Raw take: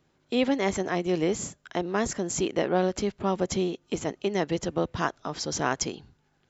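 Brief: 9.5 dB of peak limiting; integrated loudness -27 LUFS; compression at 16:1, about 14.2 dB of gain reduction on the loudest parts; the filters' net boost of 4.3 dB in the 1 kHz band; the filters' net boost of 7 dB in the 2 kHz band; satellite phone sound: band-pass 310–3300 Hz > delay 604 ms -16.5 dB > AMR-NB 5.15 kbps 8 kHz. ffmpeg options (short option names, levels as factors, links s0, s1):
-af "equalizer=f=1000:t=o:g=4,equalizer=f=2000:t=o:g=8,acompressor=threshold=0.0282:ratio=16,alimiter=level_in=1.12:limit=0.0631:level=0:latency=1,volume=0.891,highpass=310,lowpass=3300,aecho=1:1:604:0.15,volume=5.31" -ar 8000 -c:a libopencore_amrnb -b:a 5150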